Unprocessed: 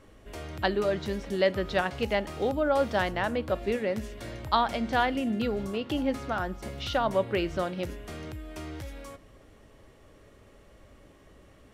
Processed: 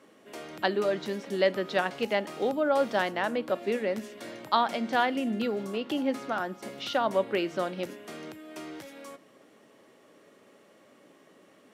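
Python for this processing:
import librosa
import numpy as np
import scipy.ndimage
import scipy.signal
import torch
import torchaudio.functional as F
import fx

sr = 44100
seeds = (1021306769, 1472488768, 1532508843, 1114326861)

y = scipy.signal.sosfilt(scipy.signal.butter(4, 190.0, 'highpass', fs=sr, output='sos'), x)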